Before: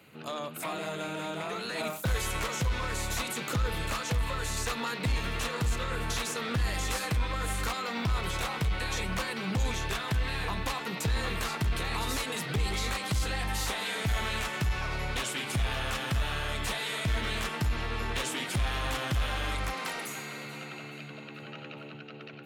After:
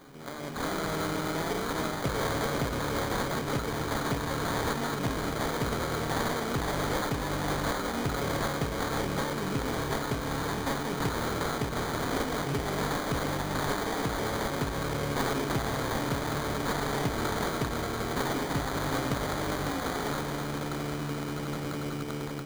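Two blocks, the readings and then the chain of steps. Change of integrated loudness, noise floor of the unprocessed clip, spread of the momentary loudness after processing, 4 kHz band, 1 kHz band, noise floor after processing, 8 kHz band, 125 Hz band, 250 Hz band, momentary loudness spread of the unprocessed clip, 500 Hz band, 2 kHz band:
+1.0 dB, -44 dBFS, 4 LU, -2.0 dB, +3.5 dB, -35 dBFS, -1.5 dB, -0.5 dB, +6.5 dB, 7 LU, +6.0 dB, -0.5 dB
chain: per-bin compression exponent 0.6; HPF 65 Hz; high shelf 3800 Hz +11 dB; AGC gain up to 10.5 dB; bell 320 Hz +10 dB 1.7 oct; resonator 140 Hz, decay 0.15 s, harmonics all, mix 80%; sample-rate reducer 2700 Hz, jitter 0%; Doppler distortion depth 0.16 ms; gain -8.5 dB

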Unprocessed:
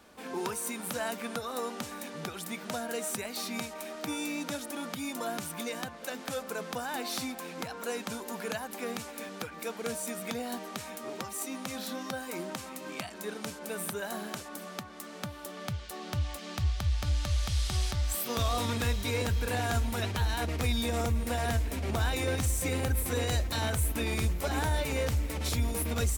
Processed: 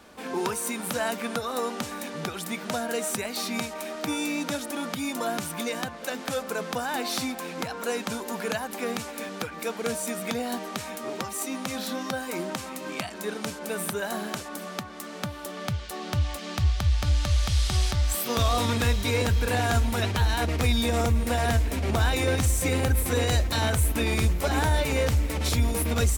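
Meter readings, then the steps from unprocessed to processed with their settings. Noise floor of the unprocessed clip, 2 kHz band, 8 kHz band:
-45 dBFS, +6.0 dB, +4.5 dB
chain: high shelf 9600 Hz -3.5 dB; gain +6 dB

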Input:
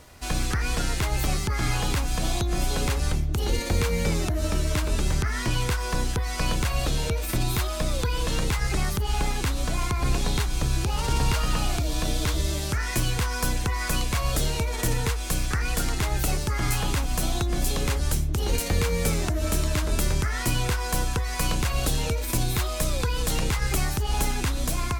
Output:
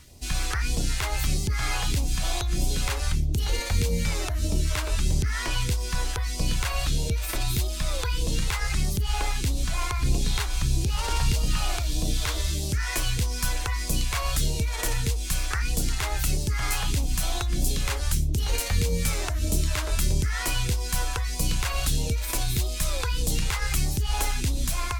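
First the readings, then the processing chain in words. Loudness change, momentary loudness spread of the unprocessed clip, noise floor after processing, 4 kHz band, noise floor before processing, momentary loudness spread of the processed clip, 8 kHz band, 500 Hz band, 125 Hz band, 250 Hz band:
-0.5 dB, 2 LU, -30 dBFS, +0.5 dB, -30 dBFS, 2 LU, +0.5 dB, -5.0 dB, -1.0 dB, -3.5 dB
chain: phaser stages 2, 1.6 Hz, lowest notch 150–1500 Hz

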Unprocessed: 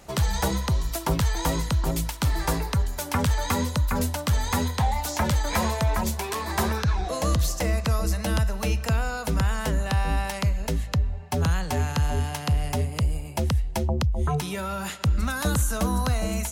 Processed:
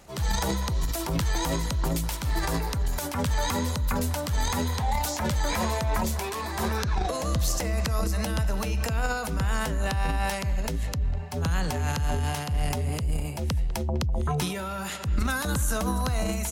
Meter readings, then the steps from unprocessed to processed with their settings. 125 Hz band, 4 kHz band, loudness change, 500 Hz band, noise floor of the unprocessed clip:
-3.0 dB, -1.0 dB, -2.0 dB, -1.5 dB, -35 dBFS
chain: transient shaper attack -7 dB, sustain +9 dB; speakerphone echo 0.2 s, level -16 dB; gain -2.5 dB

